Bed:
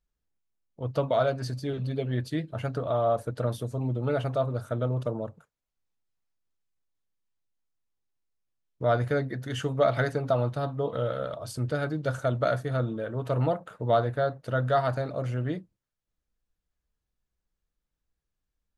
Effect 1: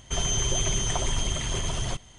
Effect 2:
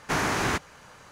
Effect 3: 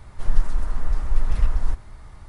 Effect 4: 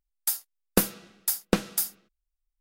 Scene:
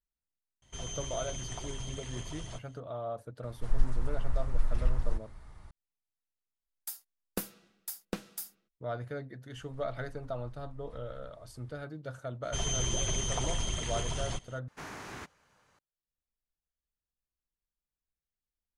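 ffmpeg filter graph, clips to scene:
ffmpeg -i bed.wav -i cue0.wav -i cue1.wav -i cue2.wav -i cue3.wav -filter_complex "[1:a]asplit=2[link_01][link_02];[3:a]asplit=2[link_03][link_04];[0:a]volume=-12.5dB[link_05];[link_04]acompressor=threshold=-27dB:ratio=6:attack=3.2:release=140:knee=1:detection=peak[link_06];[link_05]asplit=2[link_07][link_08];[link_07]atrim=end=14.684[link_09];[2:a]atrim=end=1.11,asetpts=PTS-STARTPTS,volume=-18dB[link_10];[link_08]atrim=start=15.786[link_11];[link_01]atrim=end=2.18,asetpts=PTS-STARTPTS,volume=-14dB,afade=type=in:duration=0.004:curve=hsin,afade=type=out:start_time=2.176:duration=0.004:curve=hsin,adelay=620[link_12];[link_03]atrim=end=2.28,asetpts=PTS-STARTPTS,volume=-8.5dB,afade=type=in:duration=0.004:curve=hsin,afade=type=out:start_time=2.276:duration=0.004:curve=hsin,adelay=3430[link_13];[4:a]atrim=end=2.6,asetpts=PTS-STARTPTS,volume=-13.5dB,afade=type=in:duration=0.004:curve=hsin,afade=type=out:start_time=2.596:duration=0.004:curve=hsin,adelay=6600[link_14];[link_06]atrim=end=2.28,asetpts=PTS-STARTPTS,volume=-17.5dB,afade=type=in:duration=0.004:curve=hsin,afade=type=out:start_time=2.276:duration=0.004:curve=hsin,adelay=9550[link_15];[link_02]atrim=end=2.18,asetpts=PTS-STARTPTS,volume=-6dB,afade=type=in:duration=0.02,afade=type=out:start_time=2.16:duration=0.02,adelay=12420[link_16];[link_09][link_10]acrossfade=duration=0.004:curve1=hsin:curve2=hsin[link_17];[link_17][link_11]acrossfade=duration=0.004:curve1=hsin:curve2=hsin[link_18];[link_18][link_12][link_13][link_14][link_15][link_16]amix=inputs=6:normalize=0" out.wav

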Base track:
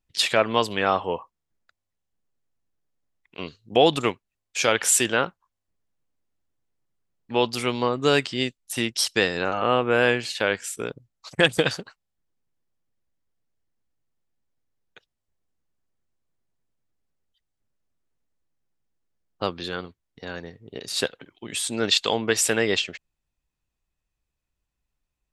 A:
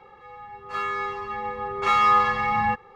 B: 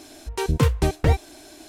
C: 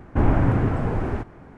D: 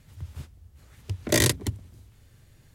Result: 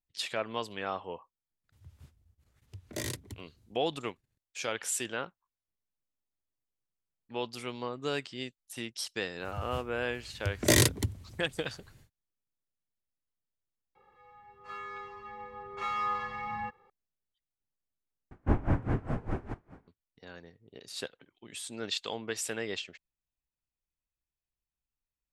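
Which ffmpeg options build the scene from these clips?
ffmpeg -i bed.wav -i cue0.wav -i cue1.wav -i cue2.wav -i cue3.wav -filter_complex "[4:a]asplit=2[link_01][link_02];[0:a]volume=-13.5dB[link_03];[link_01]agate=range=-13dB:threshold=-54dB:ratio=16:release=100:detection=peak[link_04];[3:a]aeval=exprs='val(0)*pow(10,-22*(0.5-0.5*cos(2*PI*4.9*n/s))/20)':channel_layout=same[link_05];[link_03]asplit=2[link_06][link_07];[link_06]atrim=end=18.314[link_08];[link_05]atrim=end=1.57,asetpts=PTS-STARTPTS,volume=-4.5dB[link_09];[link_07]atrim=start=19.876[link_10];[link_04]atrim=end=2.74,asetpts=PTS-STARTPTS,volume=-15.5dB,afade=type=in:duration=0.004:curve=hsin,afade=type=out:start_time=2.736:duration=0.004:curve=hsin,adelay=1640[link_11];[link_02]atrim=end=2.74,asetpts=PTS-STARTPTS,volume=-1.5dB,afade=type=in:duration=0.1,afade=type=out:start_time=2.64:duration=0.1,adelay=9360[link_12];[1:a]atrim=end=2.95,asetpts=PTS-STARTPTS,volume=-14dB,afade=type=in:duration=0.004:curve=hsin,afade=type=out:start_time=2.946:duration=0.004:curve=hsin,adelay=13950[link_13];[link_08][link_09]acrossfade=duration=0.004:curve1=hsin:curve2=hsin[link_14];[link_14][link_10]acrossfade=duration=0.004:curve1=hsin:curve2=hsin[link_15];[link_15][link_11][link_12][link_13]amix=inputs=4:normalize=0" out.wav

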